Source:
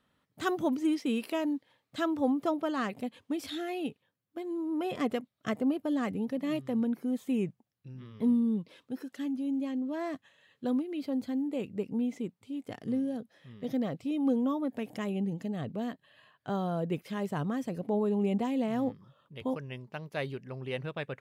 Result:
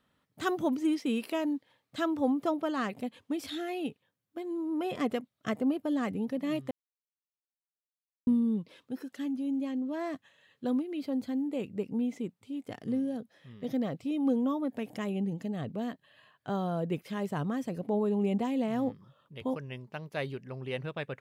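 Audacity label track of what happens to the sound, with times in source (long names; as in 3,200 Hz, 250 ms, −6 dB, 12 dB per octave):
6.710000	8.270000	silence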